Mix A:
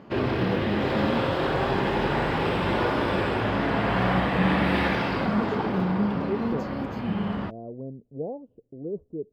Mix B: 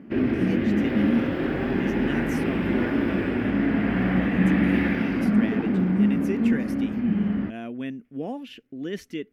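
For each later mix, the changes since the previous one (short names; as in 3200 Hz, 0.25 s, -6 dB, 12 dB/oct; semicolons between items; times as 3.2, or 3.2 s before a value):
speech: remove inverse Chebyshev low-pass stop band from 1800 Hz, stop band 60 dB; master: add graphic EQ 125/250/500/1000/2000/4000/8000 Hz -6/+11/-5/-12/+5/-12/-8 dB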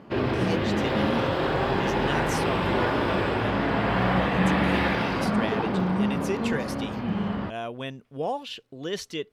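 master: add graphic EQ 125/250/500/1000/2000/4000/8000 Hz +6/-11/+5/+12/-5/+12/+8 dB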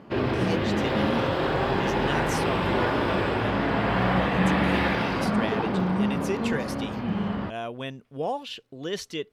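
none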